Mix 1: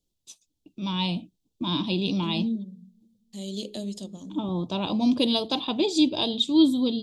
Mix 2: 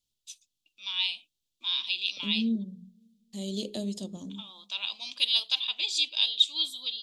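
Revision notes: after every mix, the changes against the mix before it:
first voice: add high-pass with resonance 2,500 Hz, resonance Q 1.5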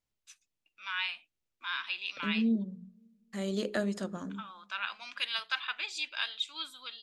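first voice −6.0 dB
master: remove drawn EQ curve 250 Hz 0 dB, 940 Hz −9 dB, 1,500 Hz −29 dB, 3,400 Hz +7 dB, 5,100 Hz +4 dB

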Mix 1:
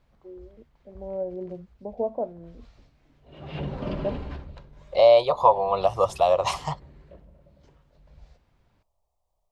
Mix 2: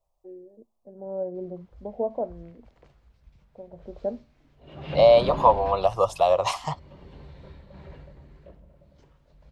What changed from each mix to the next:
background: entry +1.35 s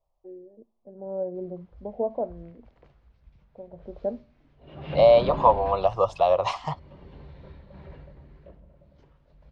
first voice: send +7.0 dB
master: add high-frequency loss of the air 140 metres

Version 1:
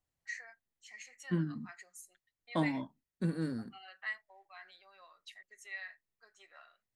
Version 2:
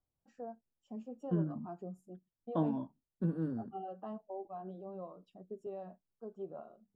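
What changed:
first voice: remove high-pass with resonance 1,900 Hz, resonance Q 8
master: add moving average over 21 samples

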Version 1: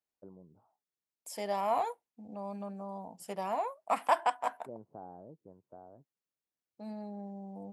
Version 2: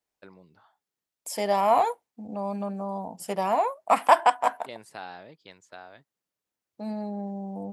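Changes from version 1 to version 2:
first voice: remove Gaussian smoothing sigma 12 samples
second voice +9.5 dB

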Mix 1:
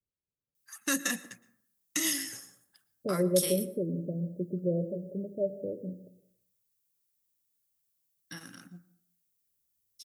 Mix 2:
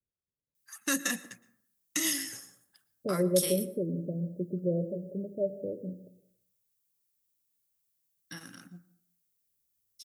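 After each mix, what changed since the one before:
nothing changed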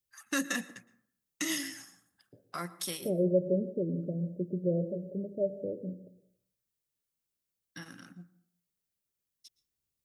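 first voice: entry −0.55 s
master: add high-shelf EQ 6,500 Hz −11 dB

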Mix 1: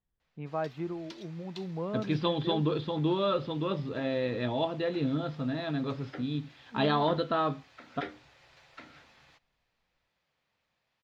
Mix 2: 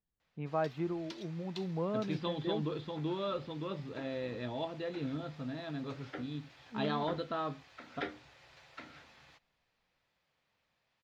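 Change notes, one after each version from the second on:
second voice −8.0 dB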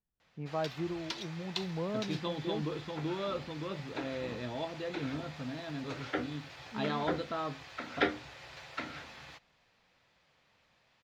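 first voice: add high-frequency loss of the air 440 metres
background +10.0 dB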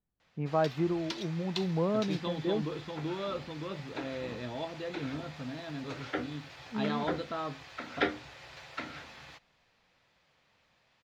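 first voice +6.5 dB

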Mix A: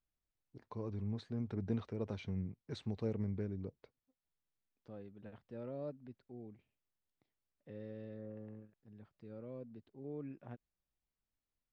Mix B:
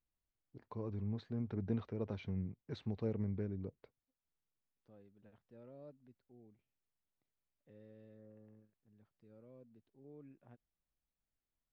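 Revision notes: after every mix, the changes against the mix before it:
first voice: add high-frequency loss of the air 130 metres
second voice −11.0 dB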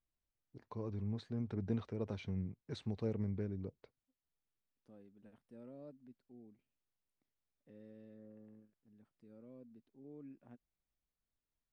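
second voice: add graphic EQ with 15 bands 100 Hz −4 dB, 250 Hz +7 dB, 4,000 Hz −3 dB
master: remove Gaussian smoothing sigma 1.6 samples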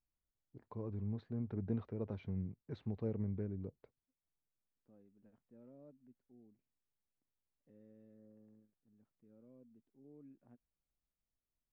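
second voice −4.5 dB
master: add head-to-tape spacing loss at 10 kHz 33 dB

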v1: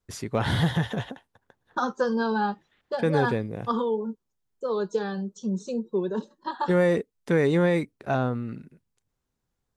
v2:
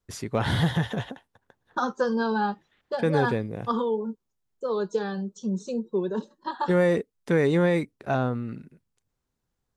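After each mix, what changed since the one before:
nothing changed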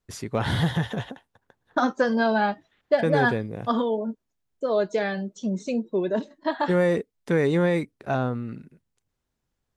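second voice: remove phaser with its sweep stopped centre 430 Hz, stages 8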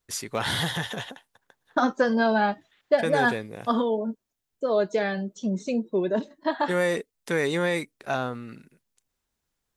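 first voice: add spectral tilt +3 dB per octave

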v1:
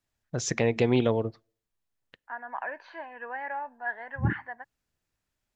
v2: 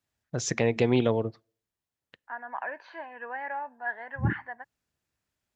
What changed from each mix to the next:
first voice: add high-pass filter 56 Hz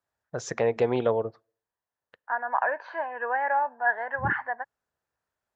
first voice −7.0 dB
master: add flat-topped bell 840 Hz +10 dB 2.3 octaves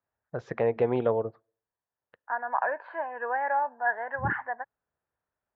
master: add high-frequency loss of the air 410 metres

